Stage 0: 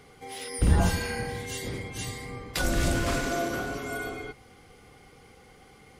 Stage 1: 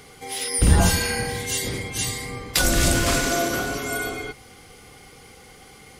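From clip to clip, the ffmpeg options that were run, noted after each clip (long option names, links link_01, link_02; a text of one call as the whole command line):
ffmpeg -i in.wav -af "highshelf=frequency=3100:gain=9,volume=5dB" out.wav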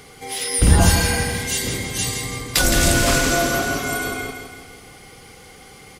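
ffmpeg -i in.wav -af "aecho=1:1:165|330|495|660|825|990:0.422|0.211|0.105|0.0527|0.0264|0.0132,volume=2.5dB" out.wav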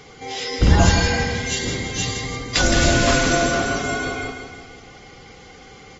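ffmpeg -i in.wav -af "volume=-1dB" -ar 44100 -c:a aac -b:a 24k out.aac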